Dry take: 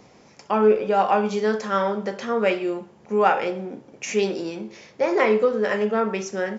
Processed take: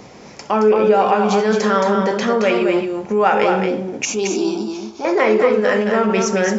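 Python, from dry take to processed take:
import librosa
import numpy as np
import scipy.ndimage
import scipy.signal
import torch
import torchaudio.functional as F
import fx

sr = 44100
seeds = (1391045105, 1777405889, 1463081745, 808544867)

p1 = fx.over_compress(x, sr, threshold_db=-28.0, ratio=-1.0)
p2 = x + (p1 * 10.0 ** (0.0 / 20.0))
p3 = fx.fixed_phaser(p2, sr, hz=520.0, stages=6, at=(4.05, 5.05))
p4 = p3 + 10.0 ** (-5.0 / 20.0) * np.pad(p3, (int(221 * sr / 1000.0), 0))[:len(p3)]
y = p4 * 10.0 ** (2.0 / 20.0)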